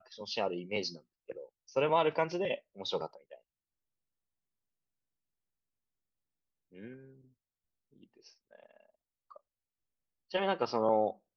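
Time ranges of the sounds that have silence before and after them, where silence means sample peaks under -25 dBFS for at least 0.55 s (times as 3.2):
1.77–3.05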